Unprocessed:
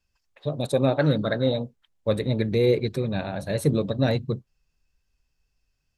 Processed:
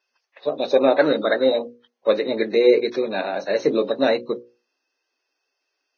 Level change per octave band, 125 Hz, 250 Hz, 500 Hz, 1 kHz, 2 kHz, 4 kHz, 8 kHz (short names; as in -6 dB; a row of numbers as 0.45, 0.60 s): under -15 dB, +1.0 dB, +6.5 dB, +7.5 dB, +7.0 dB, +4.5 dB, n/a